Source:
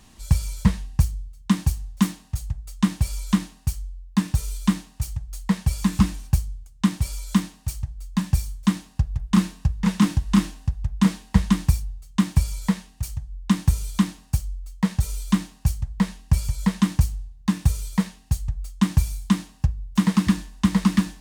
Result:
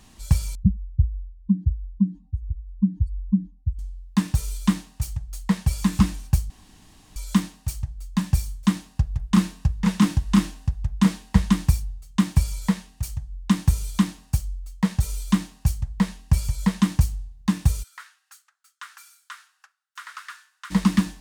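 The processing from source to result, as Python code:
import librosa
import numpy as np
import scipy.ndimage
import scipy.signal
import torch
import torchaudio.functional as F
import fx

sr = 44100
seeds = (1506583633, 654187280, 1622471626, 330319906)

y = fx.spec_expand(x, sr, power=3.0, at=(0.55, 3.79))
y = fx.ladder_highpass(y, sr, hz=1300.0, resonance_pct=75, at=(17.82, 20.7), fade=0.02)
y = fx.edit(y, sr, fx.room_tone_fill(start_s=6.5, length_s=0.66), tone=tone)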